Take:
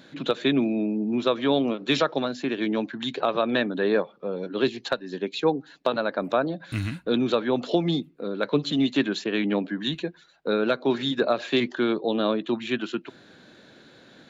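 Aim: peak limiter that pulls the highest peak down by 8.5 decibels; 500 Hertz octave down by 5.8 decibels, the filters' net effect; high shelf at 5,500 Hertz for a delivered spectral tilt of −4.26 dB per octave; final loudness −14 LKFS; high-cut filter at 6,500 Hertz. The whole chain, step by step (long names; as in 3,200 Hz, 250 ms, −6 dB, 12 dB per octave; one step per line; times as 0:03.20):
low-pass filter 6,500 Hz
parametric band 500 Hz −7.5 dB
high-shelf EQ 5,500 Hz −6.5 dB
level +17.5 dB
brickwall limiter −3.5 dBFS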